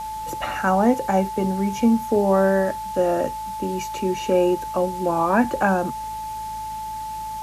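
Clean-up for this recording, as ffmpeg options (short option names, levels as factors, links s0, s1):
-af "bandreject=f=54.3:t=h:w=4,bandreject=f=108.6:t=h:w=4,bandreject=f=162.9:t=h:w=4,bandreject=f=217.2:t=h:w=4,bandreject=f=870:w=30,afwtdn=0.0063"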